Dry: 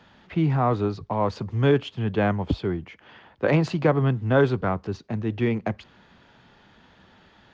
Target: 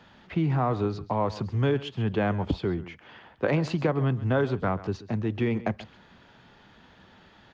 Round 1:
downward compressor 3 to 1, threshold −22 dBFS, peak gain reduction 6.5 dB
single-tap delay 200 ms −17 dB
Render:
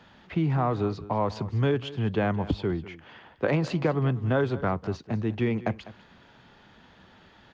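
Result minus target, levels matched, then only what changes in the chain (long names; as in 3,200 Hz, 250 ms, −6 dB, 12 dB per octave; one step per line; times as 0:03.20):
echo 65 ms late
change: single-tap delay 135 ms −17 dB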